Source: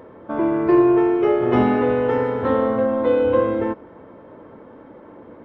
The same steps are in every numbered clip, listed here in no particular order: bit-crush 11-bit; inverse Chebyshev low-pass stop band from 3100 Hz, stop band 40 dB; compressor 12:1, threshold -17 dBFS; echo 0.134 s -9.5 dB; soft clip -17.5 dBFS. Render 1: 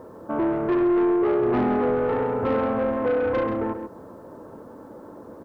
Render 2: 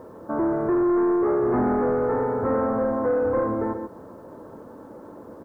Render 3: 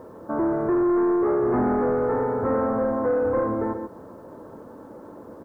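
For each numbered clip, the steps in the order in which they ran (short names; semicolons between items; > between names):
inverse Chebyshev low-pass > bit-crush > soft clip > echo > compressor; echo > soft clip > compressor > inverse Chebyshev low-pass > bit-crush; echo > soft clip > inverse Chebyshev low-pass > compressor > bit-crush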